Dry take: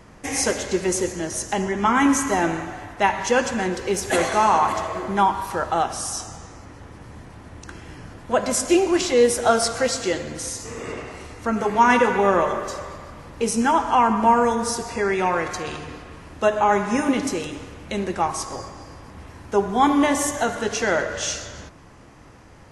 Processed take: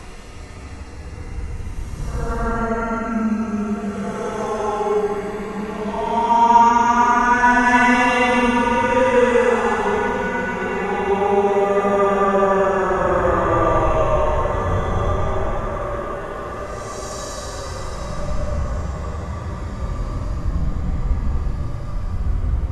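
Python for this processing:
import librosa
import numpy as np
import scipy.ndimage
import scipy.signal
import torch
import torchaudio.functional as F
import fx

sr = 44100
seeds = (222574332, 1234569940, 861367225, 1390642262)

y = fx.dmg_wind(x, sr, seeds[0], corner_hz=84.0, level_db=-17.0)
y = fx.paulstretch(y, sr, seeds[1], factor=12.0, window_s=0.1, from_s=11.26)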